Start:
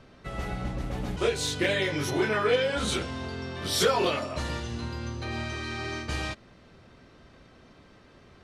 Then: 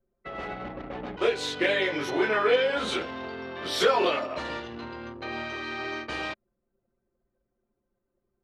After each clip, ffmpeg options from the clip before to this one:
-filter_complex "[0:a]acrossover=split=250 4200:gain=0.126 1 0.224[s0][s1][s2];[s0][s1][s2]amix=inputs=3:normalize=0,anlmdn=0.251,volume=1.33"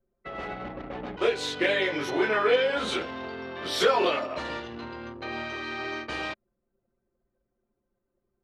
-af anull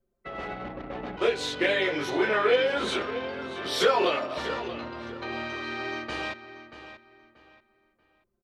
-filter_complex "[0:a]asplit=2[s0][s1];[s1]adelay=634,lowpass=f=4600:p=1,volume=0.251,asplit=2[s2][s3];[s3]adelay=634,lowpass=f=4600:p=1,volume=0.29,asplit=2[s4][s5];[s5]adelay=634,lowpass=f=4600:p=1,volume=0.29[s6];[s0][s2][s4][s6]amix=inputs=4:normalize=0"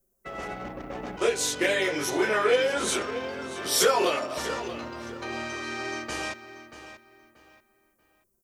-af "aexciter=amount=6.4:drive=5.1:freq=5600"

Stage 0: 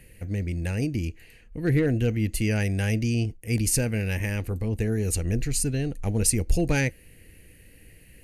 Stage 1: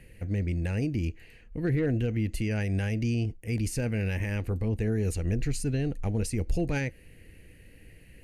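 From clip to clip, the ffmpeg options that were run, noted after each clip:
-af "alimiter=limit=0.112:level=0:latency=1:release=102,lowpass=f=3500:p=1"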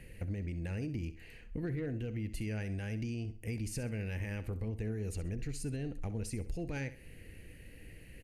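-af "acompressor=threshold=0.0178:ratio=6,aecho=1:1:65|130|195:0.2|0.0658|0.0217"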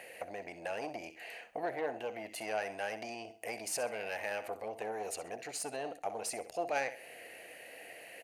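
-af "asoftclip=type=tanh:threshold=0.0224,highpass=f=690:t=q:w=5.3,volume=2.51"

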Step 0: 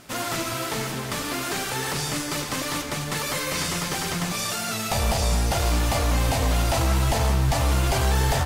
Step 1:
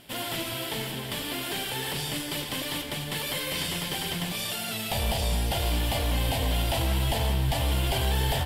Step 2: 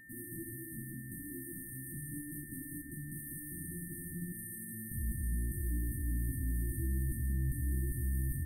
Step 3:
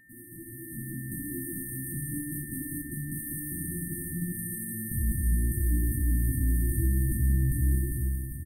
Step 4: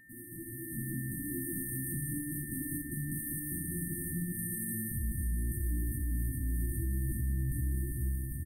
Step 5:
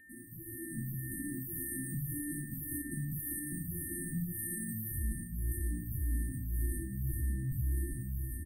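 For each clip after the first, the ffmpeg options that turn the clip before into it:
-af "equalizer=f=1250:t=o:w=0.33:g=-10,equalizer=f=3150:t=o:w=0.33:g=10,equalizer=f=6300:t=o:w=0.33:g=-10,equalizer=f=12500:t=o:w=0.33:g=6,volume=0.596"
-af "afftfilt=real='re*(1-between(b*sr/4096,360,8300))':imag='im*(1-between(b*sr/4096,360,8300))':win_size=4096:overlap=0.75,aeval=exprs='val(0)+0.00501*sin(2*PI*1800*n/s)':c=same,volume=0.422"
-filter_complex "[0:a]dynaudnorm=f=130:g=11:m=3.55,asplit=2[s0][s1];[s1]aecho=0:1:233:0.266[s2];[s0][s2]amix=inputs=2:normalize=0,volume=0.75"
-af "alimiter=level_in=1.26:limit=0.0631:level=0:latency=1:release=312,volume=0.794"
-filter_complex "[0:a]asplit=2[s0][s1];[s1]afreqshift=-1.8[s2];[s0][s2]amix=inputs=2:normalize=1,volume=1.12"

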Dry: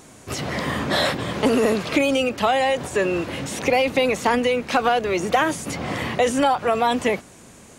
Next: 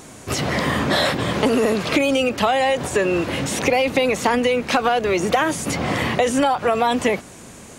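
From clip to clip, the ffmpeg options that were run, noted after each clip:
-af "acompressor=threshold=0.0794:ratio=2.5,volume=1.88"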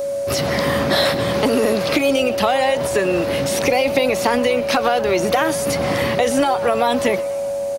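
-filter_complex "[0:a]aeval=exprs='val(0)+0.1*sin(2*PI*560*n/s)':c=same,aexciter=amount=1.5:drive=4.4:freq=4200,asplit=6[s0][s1][s2][s3][s4][s5];[s1]adelay=123,afreqshift=100,volume=0.126[s6];[s2]adelay=246,afreqshift=200,volume=0.0692[s7];[s3]adelay=369,afreqshift=300,volume=0.038[s8];[s4]adelay=492,afreqshift=400,volume=0.0209[s9];[s5]adelay=615,afreqshift=500,volume=0.0115[s10];[s0][s6][s7][s8][s9][s10]amix=inputs=6:normalize=0"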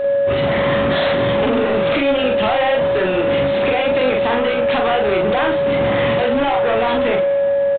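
-filter_complex "[0:a]asoftclip=type=tanh:threshold=0.0891,asplit=2[s0][s1];[s1]adelay=43,volume=0.708[s2];[s0][s2]amix=inputs=2:normalize=0,aresample=8000,aresample=44100,volume=1.78"

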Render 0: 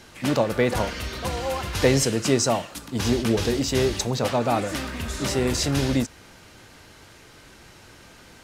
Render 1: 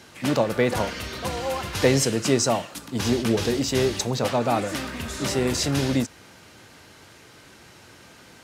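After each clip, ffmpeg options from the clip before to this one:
-af "highpass=85"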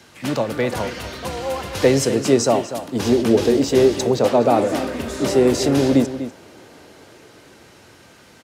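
-filter_complex "[0:a]acrossover=split=280|660|6500[s0][s1][s2][s3];[s1]dynaudnorm=f=420:g=9:m=4.47[s4];[s0][s4][s2][s3]amix=inputs=4:normalize=0,asplit=2[s5][s6];[s6]adelay=244.9,volume=0.282,highshelf=f=4000:g=-5.51[s7];[s5][s7]amix=inputs=2:normalize=0"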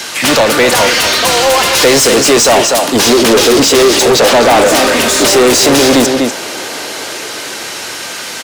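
-filter_complex "[0:a]highshelf=f=3900:g=12,asplit=2[s0][s1];[s1]highpass=f=720:p=1,volume=35.5,asoftclip=type=tanh:threshold=1[s2];[s0][s2]amix=inputs=2:normalize=0,lowpass=f=5600:p=1,volume=0.501"

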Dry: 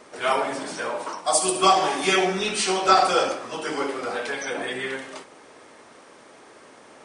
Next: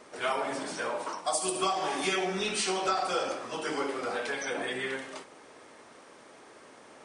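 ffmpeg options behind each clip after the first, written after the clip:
-af "acompressor=threshold=0.0794:ratio=5,volume=0.631"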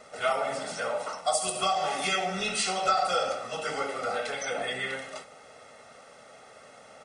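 -af "aecho=1:1:1.5:0.79"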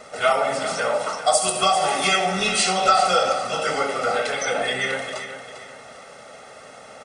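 -af "aecho=1:1:398|796|1194|1592:0.282|0.093|0.0307|0.0101,volume=2.51"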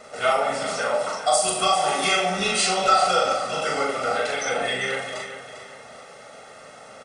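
-filter_complex "[0:a]asplit=2[s0][s1];[s1]adelay=40,volume=0.708[s2];[s0][s2]amix=inputs=2:normalize=0,volume=0.708"

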